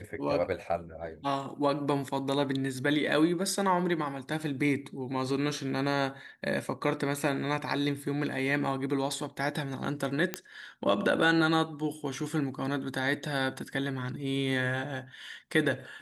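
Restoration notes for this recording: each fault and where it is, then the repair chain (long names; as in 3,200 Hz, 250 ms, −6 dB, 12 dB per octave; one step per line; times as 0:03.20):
0:10.34: click −13 dBFS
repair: click removal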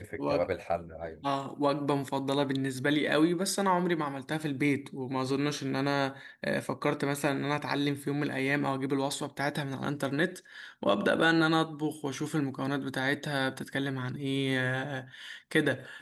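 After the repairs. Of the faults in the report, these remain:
none of them is left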